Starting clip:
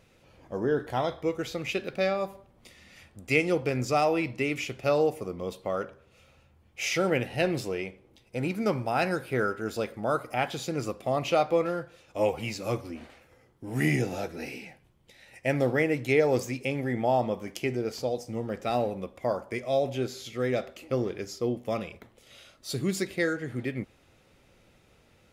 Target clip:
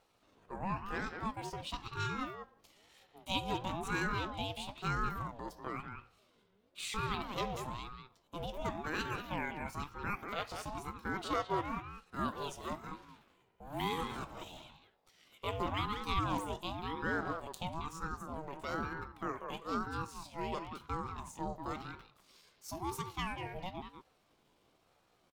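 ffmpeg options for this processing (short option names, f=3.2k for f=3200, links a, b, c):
-filter_complex "[0:a]asetrate=58866,aresample=44100,atempo=0.749154,asplit=2[a][b];[b]adelay=190,highpass=300,lowpass=3.4k,asoftclip=type=hard:threshold=-18dB,volume=-6dB[c];[a][c]amix=inputs=2:normalize=0,aeval=exprs='val(0)*sin(2*PI*470*n/s+470*0.4/1*sin(2*PI*1*n/s))':c=same,volume=-8dB"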